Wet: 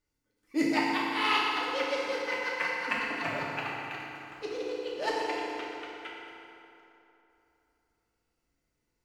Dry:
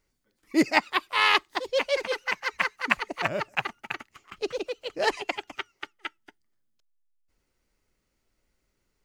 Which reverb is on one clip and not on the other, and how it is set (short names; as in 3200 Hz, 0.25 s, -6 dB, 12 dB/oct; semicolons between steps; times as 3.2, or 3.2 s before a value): FDN reverb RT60 3.1 s, high-frequency decay 0.65×, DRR -6 dB; gain -11 dB